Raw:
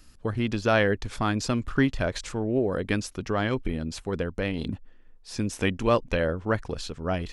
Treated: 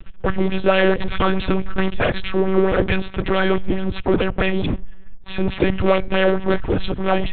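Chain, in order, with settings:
low-shelf EQ 75 Hz +9.5 dB
leveller curve on the samples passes 5
tuned comb filter 250 Hz, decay 0.59 s, harmonics all, mix 50%
one-pitch LPC vocoder at 8 kHz 190 Hz
auto-filter bell 4.6 Hz 280–3,100 Hz +8 dB

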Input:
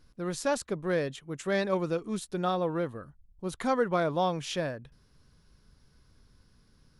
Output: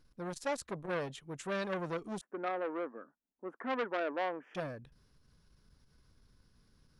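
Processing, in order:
0:02.21–0:04.55: elliptic band-pass filter 250–1,700 Hz, stop band 40 dB
saturating transformer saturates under 1,600 Hz
level −4 dB

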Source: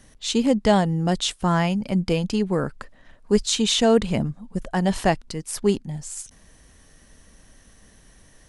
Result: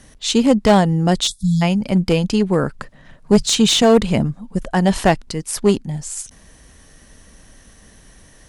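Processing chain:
0:01.27–0:01.62: time-frequency box erased 210–3,300 Hz
0:02.79–0:03.83: parametric band 150 Hz +14 dB 0.47 octaves
asymmetric clip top −17 dBFS
level +6 dB

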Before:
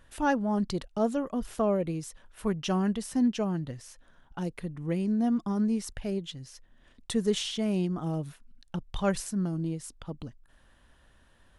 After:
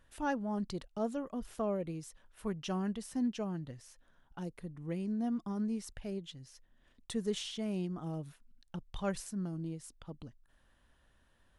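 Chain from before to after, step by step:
0:04.44–0:04.86: dynamic equaliser 2,700 Hz, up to −5 dB, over −56 dBFS, Q 0.97
level −8 dB

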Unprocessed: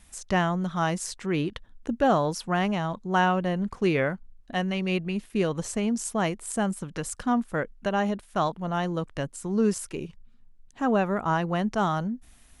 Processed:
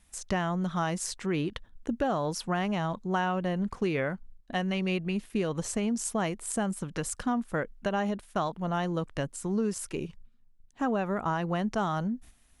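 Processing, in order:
noise gate −47 dBFS, range −8 dB
downward compressor, threshold −25 dBFS, peak gain reduction 8 dB

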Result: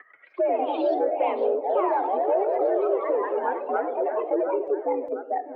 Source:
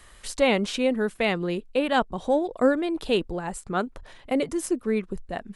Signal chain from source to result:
expanding power law on the bin magnitudes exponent 2.6
echo with a time of its own for lows and highs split 560 Hz, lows 207 ms, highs 706 ms, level −13.5 dB
on a send at −20 dB: convolution reverb RT60 0.25 s, pre-delay 61 ms
on the sum: brickwall limiter −21 dBFS, peak gain reduction 11 dB
harmonic generator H 3 −31 dB, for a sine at −21 dBFS
in parallel at −1.5 dB: downward compressor, threshold −37 dBFS, peak gain reduction 12.5 dB
on the sum: flanger 0.39 Hz, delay 8.9 ms, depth 9.9 ms, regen −81%
single-sideband voice off tune +66 Hz 290–2,300 Hz
delay with pitch and tempo change per echo 134 ms, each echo +2 semitones, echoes 3
multiband upward and downward compressor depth 40%
level +6.5 dB

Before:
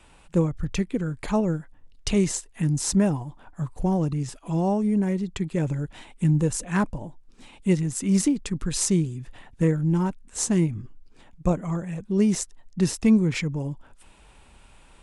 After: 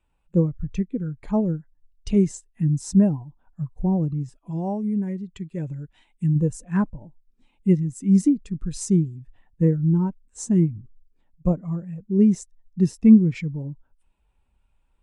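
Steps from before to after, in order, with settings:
0:04.51–0:06.36: tilt shelving filter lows −3.5 dB, about 1,100 Hz
every bin expanded away from the loudest bin 1.5 to 1
level +5 dB

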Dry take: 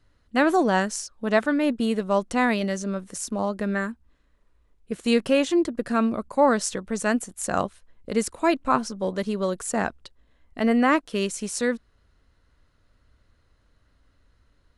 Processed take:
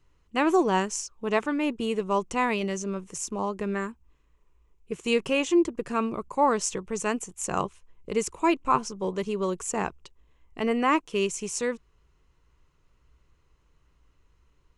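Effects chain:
EQ curve with evenly spaced ripples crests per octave 0.73, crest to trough 9 dB
level −3 dB

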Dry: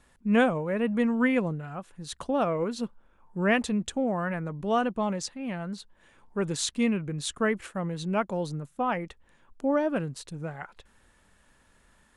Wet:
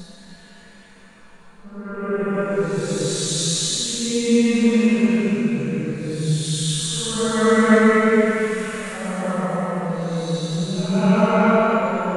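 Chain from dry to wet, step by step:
automatic gain control gain up to 13 dB
coupled-rooms reverb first 0.64 s, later 2.1 s, from −24 dB, DRR −6 dB
extreme stretch with random phases 5.1×, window 0.25 s, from 0:05.96
level −8.5 dB

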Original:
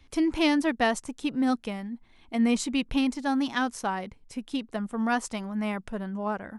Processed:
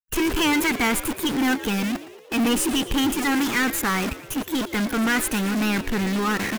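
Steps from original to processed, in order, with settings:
parametric band 2,600 Hz +2 dB
phaser with its sweep stopped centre 1,500 Hz, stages 4
centre clipping without the shift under −46 dBFS
formants moved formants +3 semitones
power curve on the samples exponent 0.35
on a send: echo with shifted repeats 115 ms, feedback 56%, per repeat +76 Hz, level −15.5 dB

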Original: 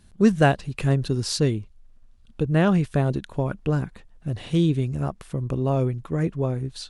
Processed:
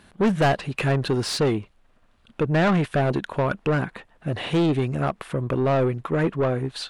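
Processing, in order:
parametric band 5,800 Hz −7.5 dB 1.2 octaves
mid-hump overdrive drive 27 dB, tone 2,800 Hz, clips at −5.5 dBFS
level −6 dB

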